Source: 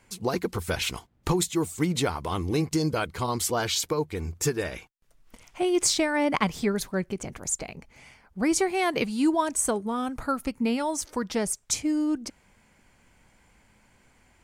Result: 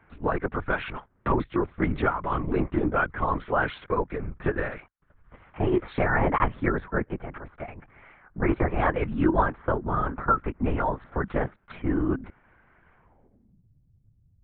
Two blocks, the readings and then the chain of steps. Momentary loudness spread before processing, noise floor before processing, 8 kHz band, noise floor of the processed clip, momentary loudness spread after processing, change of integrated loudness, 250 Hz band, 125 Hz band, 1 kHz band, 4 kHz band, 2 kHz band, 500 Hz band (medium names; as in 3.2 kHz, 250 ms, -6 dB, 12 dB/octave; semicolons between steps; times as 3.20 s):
8 LU, -63 dBFS, under -40 dB, -64 dBFS, 10 LU, 0.0 dB, -1.5 dB, +2.5 dB, +3.5 dB, -16.0 dB, +3.0 dB, +0.5 dB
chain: low-pass sweep 1.5 kHz -> 120 Hz, 12.95–13.67 s; LPC vocoder at 8 kHz whisper